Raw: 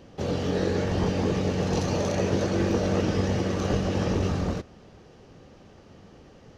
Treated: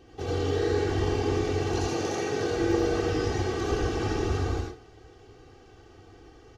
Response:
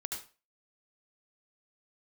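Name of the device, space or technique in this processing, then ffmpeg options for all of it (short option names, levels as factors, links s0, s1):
microphone above a desk: -filter_complex "[0:a]aecho=1:1:2.6:0.82[s0];[1:a]atrim=start_sample=2205[s1];[s0][s1]afir=irnorm=-1:irlink=0,asettb=1/sr,asplit=3[s2][s3][s4];[s2]atrim=end=1.884[s5];[s3]atrim=start=1.88:end=2.51,asetpts=PTS-STARTPTS,afade=t=in:d=0.004:c=qsin,afade=t=out:st=0.626:d=0.004:c=qsin,highpass=130[s6];[s4]atrim=start=2.506[s7];[s5][s6]acrossfade=d=0.004:c1=hsin:c2=qsin[s8];[s8][s7]acrossfade=d=0.004:c1=qsin:c2=hsin,volume=0.708"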